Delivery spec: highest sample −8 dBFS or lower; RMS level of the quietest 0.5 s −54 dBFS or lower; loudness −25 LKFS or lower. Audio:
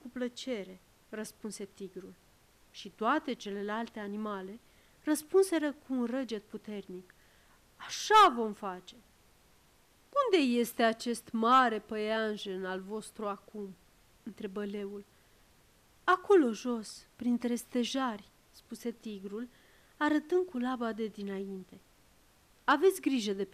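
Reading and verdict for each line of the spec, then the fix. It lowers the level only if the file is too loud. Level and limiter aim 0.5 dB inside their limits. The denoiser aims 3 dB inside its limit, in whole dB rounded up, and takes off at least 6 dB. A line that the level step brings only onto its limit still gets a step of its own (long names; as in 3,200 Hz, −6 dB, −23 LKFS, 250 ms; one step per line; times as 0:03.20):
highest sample −15.0 dBFS: in spec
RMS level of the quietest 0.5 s −65 dBFS: in spec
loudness −32.0 LKFS: in spec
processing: no processing needed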